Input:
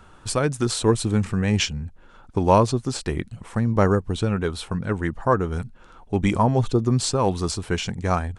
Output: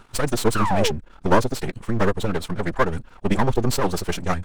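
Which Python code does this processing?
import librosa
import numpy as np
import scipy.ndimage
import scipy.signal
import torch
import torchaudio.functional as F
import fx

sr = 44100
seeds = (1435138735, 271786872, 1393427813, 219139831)

y = fx.spec_paint(x, sr, seeds[0], shape='fall', start_s=1.03, length_s=0.7, low_hz=380.0, high_hz=1500.0, level_db=-24.0)
y = np.maximum(y, 0.0)
y = fx.stretch_vocoder(y, sr, factor=0.53)
y = y * librosa.db_to_amplitude(6.0)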